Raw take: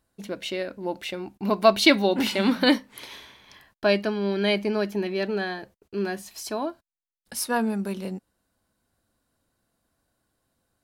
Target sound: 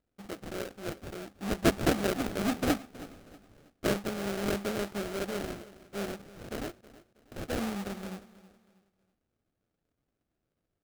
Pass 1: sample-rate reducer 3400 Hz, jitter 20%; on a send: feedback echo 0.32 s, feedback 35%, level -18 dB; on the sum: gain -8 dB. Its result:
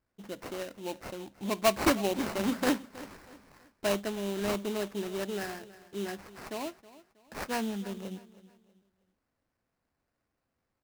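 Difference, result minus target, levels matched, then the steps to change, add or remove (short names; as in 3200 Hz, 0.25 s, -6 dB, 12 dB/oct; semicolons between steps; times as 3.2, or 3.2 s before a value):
sample-rate reducer: distortion -14 dB
change: sample-rate reducer 1000 Hz, jitter 20%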